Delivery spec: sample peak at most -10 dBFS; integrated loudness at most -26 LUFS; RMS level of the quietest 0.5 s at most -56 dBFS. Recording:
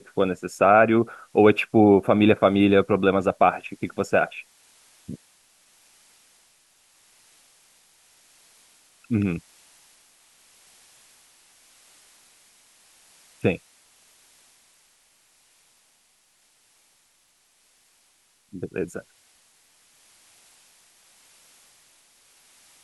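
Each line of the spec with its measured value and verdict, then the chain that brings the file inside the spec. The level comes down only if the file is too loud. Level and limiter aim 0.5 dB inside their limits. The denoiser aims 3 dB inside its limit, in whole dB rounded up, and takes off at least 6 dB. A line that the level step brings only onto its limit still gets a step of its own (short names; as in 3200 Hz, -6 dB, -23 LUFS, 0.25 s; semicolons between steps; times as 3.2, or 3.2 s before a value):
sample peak -4.0 dBFS: fail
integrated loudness -21.0 LUFS: fail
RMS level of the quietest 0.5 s -64 dBFS: OK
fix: gain -5.5 dB; limiter -10.5 dBFS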